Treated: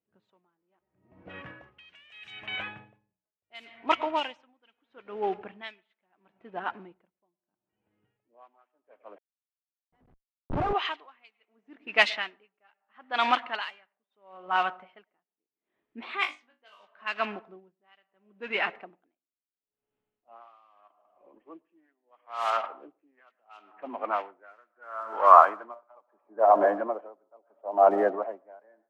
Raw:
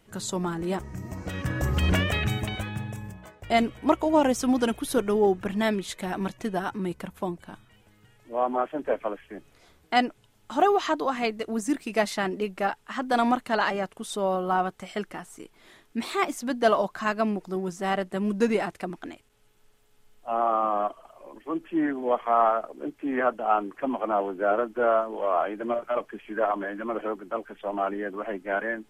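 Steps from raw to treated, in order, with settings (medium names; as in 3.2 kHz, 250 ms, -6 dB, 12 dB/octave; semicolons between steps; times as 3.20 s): block-companded coder 5-bit; band-pass sweep 2.8 kHz -> 660 Hz, 23.85–26.50 s; dynamic bell 980 Hz, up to +4 dB, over -49 dBFS, Q 3.1; on a send at -17 dB: reverberation RT60 1.0 s, pre-delay 98 ms; 9.18–10.73 s: on the sum: Schmitt trigger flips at -42.5 dBFS; 16.19–16.85 s: flutter echo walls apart 3.4 m, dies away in 0.34 s; level-controlled noise filter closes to 350 Hz, open at -29.5 dBFS; level rider gain up to 14.5 dB; logarithmic tremolo 0.75 Hz, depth 39 dB; trim +2 dB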